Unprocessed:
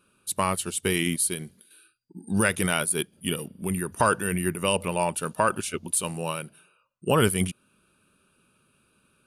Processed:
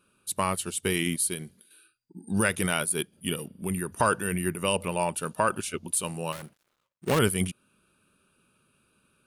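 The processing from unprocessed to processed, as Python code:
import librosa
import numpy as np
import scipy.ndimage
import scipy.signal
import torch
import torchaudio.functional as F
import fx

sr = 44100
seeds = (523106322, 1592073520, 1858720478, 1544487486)

y = fx.dead_time(x, sr, dead_ms=0.25, at=(6.32, 7.19))
y = y * 10.0 ** (-2.0 / 20.0)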